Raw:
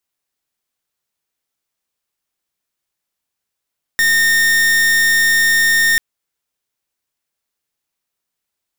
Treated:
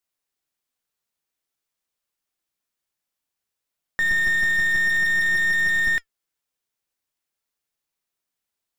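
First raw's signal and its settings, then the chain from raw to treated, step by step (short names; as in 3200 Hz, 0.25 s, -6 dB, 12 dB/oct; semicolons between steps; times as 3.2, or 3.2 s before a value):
pulse 1830 Hz, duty 43% -13 dBFS 1.99 s
flange 0.52 Hz, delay 1.3 ms, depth 3.3 ms, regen +86%; slew limiter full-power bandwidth 210 Hz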